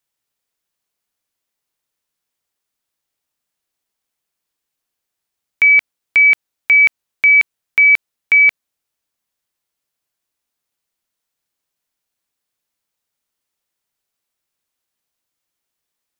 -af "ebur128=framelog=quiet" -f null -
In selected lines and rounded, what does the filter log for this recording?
Integrated loudness:
  I:         -11.0 LUFS
  Threshold: -21.0 LUFS
Loudness range:
  LRA:         7.4 LU
  Threshold: -33.5 LUFS
  LRA low:   -18.5 LUFS
  LRA high:  -11.1 LUFS